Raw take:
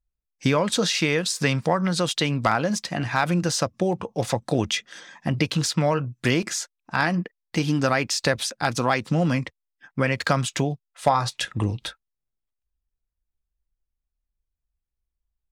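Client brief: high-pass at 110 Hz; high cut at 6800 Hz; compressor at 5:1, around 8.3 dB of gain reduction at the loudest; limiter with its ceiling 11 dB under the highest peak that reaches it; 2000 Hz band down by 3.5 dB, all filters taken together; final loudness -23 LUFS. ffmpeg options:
-af "highpass=110,lowpass=6.8k,equalizer=f=2k:t=o:g=-4.5,acompressor=threshold=-25dB:ratio=5,volume=10dB,alimiter=limit=-11.5dB:level=0:latency=1"

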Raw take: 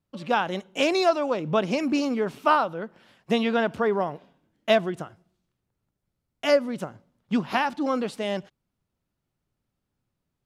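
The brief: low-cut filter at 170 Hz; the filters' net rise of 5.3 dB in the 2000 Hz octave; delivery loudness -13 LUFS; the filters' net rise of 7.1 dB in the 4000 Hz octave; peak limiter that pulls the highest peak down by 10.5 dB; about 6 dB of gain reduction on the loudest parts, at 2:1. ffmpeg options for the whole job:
-af "highpass=170,equalizer=f=2k:t=o:g=5,equalizer=f=4k:t=o:g=7.5,acompressor=threshold=-24dB:ratio=2,volume=17.5dB,alimiter=limit=-0.5dB:level=0:latency=1"

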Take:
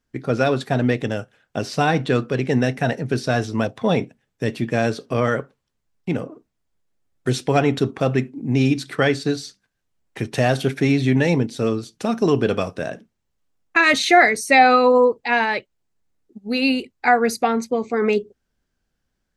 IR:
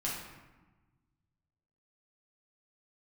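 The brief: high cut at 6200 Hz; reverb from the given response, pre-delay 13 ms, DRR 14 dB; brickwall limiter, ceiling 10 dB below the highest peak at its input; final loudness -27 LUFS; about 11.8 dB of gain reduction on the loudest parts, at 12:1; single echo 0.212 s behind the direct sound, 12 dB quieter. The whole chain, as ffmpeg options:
-filter_complex "[0:a]lowpass=6.2k,acompressor=threshold=-20dB:ratio=12,alimiter=limit=-17.5dB:level=0:latency=1,aecho=1:1:212:0.251,asplit=2[a][b];[1:a]atrim=start_sample=2205,adelay=13[c];[b][c]afir=irnorm=-1:irlink=0,volume=-18dB[d];[a][d]amix=inputs=2:normalize=0,volume=1.5dB"

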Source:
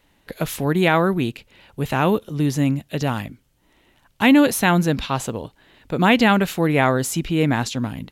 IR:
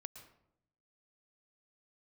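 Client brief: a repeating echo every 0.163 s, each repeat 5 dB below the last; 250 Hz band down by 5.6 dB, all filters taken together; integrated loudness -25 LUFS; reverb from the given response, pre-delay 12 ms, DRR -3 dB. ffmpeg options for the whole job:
-filter_complex "[0:a]equalizer=f=250:t=o:g=-7.5,aecho=1:1:163|326|489|652|815|978|1141:0.562|0.315|0.176|0.0988|0.0553|0.031|0.0173,asplit=2[a][b];[1:a]atrim=start_sample=2205,adelay=12[c];[b][c]afir=irnorm=-1:irlink=0,volume=8dB[d];[a][d]amix=inputs=2:normalize=0,volume=-9dB"

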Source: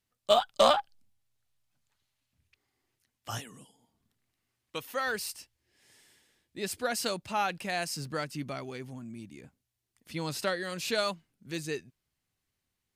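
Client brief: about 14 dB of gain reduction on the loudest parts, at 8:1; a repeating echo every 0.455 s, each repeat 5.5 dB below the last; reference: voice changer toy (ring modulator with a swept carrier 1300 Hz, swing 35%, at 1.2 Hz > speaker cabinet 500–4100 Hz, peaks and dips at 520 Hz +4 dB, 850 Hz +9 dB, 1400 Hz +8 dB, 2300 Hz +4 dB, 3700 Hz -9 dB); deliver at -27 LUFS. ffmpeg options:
-af "acompressor=threshold=-32dB:ratio=8,aecho=1:1:455|910|1365|1820|2275|2730|3185:0.531|0.281|0.149|0.079|0.0419|0.0222|0.0118,aeval=exprs='val(0)*sin(2*PI*1300*n/s+1300*0.35/1.2*sin(2*PI*1.2*n/s))':c=same,highpass=500,equalizer=f=520:t=q:w=4:g=4,equalizer=f=850:t=q:w=4:g=9,equalizer=f=1.4k:t=q:w=4:g=8,equalizer=f=2.3k:t=q:w=4:g=4,equalizer=f=3.7k:t=q:w=4:g=-9,lowpass=f=4.1k:w=0.5412,lowpass=f=4.1k:w=1.3066,volume=10.5dB"

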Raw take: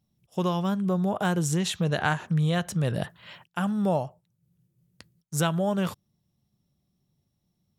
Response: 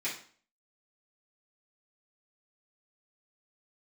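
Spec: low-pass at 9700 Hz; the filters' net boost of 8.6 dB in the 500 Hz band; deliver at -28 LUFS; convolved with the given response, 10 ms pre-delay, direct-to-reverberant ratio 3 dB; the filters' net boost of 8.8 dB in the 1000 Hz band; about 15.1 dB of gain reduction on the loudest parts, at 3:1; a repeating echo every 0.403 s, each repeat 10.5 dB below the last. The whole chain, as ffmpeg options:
-filter_complex "[0:a]lowpass=9.7k,equalizer=f=500:t=o:g=8,equalizer=f=1k:t=o:g=8.5,acompressor=threshold=-35dB:ratio=3,aecho=1:1:403|806|1209:0.299|0.0896|0.0269,asplit=2[a][b];[1:a]atrim=start_sample=2205,adelay=10[c];[b][c]afir=irnorm=-1:irlink=0,volume=-8dB[d];[a][d]amix=inputs=2:normalize=0,volume=6.5dB"

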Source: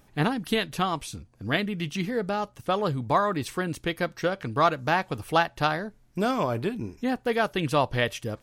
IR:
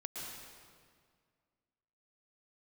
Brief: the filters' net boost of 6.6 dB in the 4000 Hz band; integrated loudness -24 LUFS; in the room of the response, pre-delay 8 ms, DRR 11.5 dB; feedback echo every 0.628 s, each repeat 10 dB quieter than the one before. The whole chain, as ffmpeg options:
-filter_complex "[0:a]equalizer=f=4k:t=o:g=8.5,aecho=1:1:628|1256|1884|2512:0.316|0.101|0.0324|0.0104,asplit=2[a][b];[1:a]atrim=start_sample=2205,adelay=8[c];[b][c]afir=irnorm=-1:irlink=0,volume=-11dB[d];[a][d]amix=inputs=2:normalize=0,volume=1.5dB"

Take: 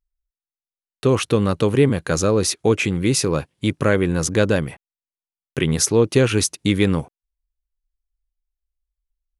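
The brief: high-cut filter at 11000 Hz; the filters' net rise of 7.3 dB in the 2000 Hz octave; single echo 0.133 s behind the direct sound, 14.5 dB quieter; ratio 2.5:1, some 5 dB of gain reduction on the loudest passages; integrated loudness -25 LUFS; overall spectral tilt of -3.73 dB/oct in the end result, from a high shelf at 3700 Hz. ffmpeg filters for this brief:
-af "lowpass=11k,equalizer=f=2k:t=o:g=7.5,highshelf=f=3.7k:g=7,acompressor=threshold=-17dB:ratio=2.5,aecho=1:1:133:0.188,volume=-4.5dB"

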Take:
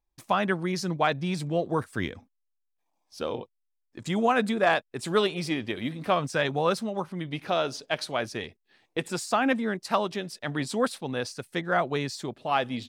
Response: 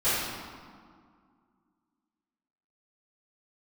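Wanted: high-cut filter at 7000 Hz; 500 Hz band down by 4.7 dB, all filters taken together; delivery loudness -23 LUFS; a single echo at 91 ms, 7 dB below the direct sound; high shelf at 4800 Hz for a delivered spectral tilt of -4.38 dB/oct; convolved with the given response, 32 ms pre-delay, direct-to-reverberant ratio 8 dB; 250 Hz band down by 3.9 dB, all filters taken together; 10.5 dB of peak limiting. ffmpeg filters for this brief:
-filter_complex "[0:a]lowpass=7k,equalizer=f=250:t=o:g=-4,equalizer=f=500:t=o:g=-5,highshelf=f=4.8k:g=4,alimiter=limit=-21.5dB:level=0:latency=1,aecho=1:1:91:0.447,asplit=2[a][b];[1:a]atrim=start_sample=2205,adelay=32[c];[b][c]afir=irnorm=-1:irlink=0,volume=-22dB[d];[a][d]amix=inputs=2:normalize=0,volume=9.5dB"

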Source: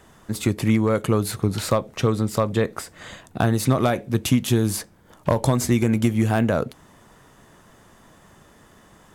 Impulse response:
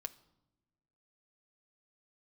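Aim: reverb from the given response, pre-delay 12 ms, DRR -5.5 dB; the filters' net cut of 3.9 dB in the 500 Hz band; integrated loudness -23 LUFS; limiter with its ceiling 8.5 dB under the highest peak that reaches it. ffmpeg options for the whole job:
-filter_complex "[0:a]equalizer=f=500:t=o:g=-5,alimiter=limit=-16.5dB:level=0:latency=1,asplit=2[a][b];[1:a]atrim=start_sample=2205,adelay=12[c];[b][c]afir=irnorm=-1:irlink=0,volume=8.5dB[d];[a][d]amix=inputs=2:normalize=0,volume=-1dB"

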